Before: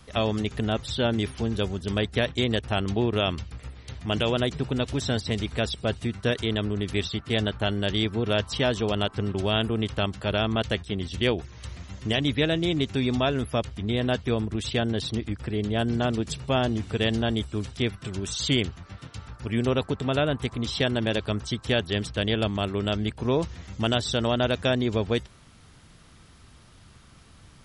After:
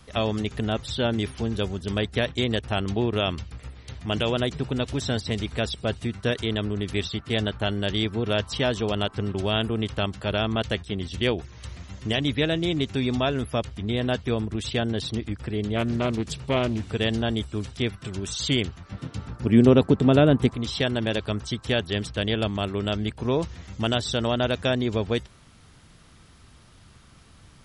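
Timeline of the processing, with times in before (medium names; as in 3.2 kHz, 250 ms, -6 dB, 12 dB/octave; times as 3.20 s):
15.76–16.85 s: loudspeaker Doppler distortion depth 0.32 ms
18.92–20.51 s: peaking EQ 240 Hz +11 dB 2.6 oct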